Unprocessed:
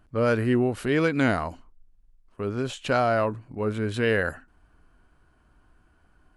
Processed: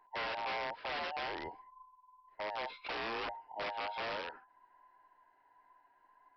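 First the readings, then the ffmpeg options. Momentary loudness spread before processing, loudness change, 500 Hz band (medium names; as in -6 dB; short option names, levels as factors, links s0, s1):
9 LU, -14.0 dB, -18.0 dB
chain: -filter_complex "[0:a]afftfilt=real='real(if(between(b,1,1008),(2*floor((b-1)/48)+1)*48-b,b),0)':imag='imag(if(between(b,1,1008),(2*floor((b-1)/48)+1)*48-b,b),0)*if(between(b,1,1008),-1,1)':win_size=2048:overlap=0.75,adynamicequalizer=threshold=0.0112:dfrequency=1900:dqfactor=1.4:tfrequency=1900:tqfactor=1.4:attack=5:release=100:ratio=0.375:range=2.5:mode=cutabove:tftype=bell,acrossover=split=130|3000[s0][s1][s2];[s1]acompressor=threshold=0.0447:ratio=3[s3];[s0][s3][s2]amix=inputs=3:normalize=0,aresample=11025,aeval=exprs='(mod(15.8*val(0)+1,2)-1)/15.8':c=same,aresample=44100,bass=f=250:g=-11,treble=f=4000:g=-12,volume=0.422"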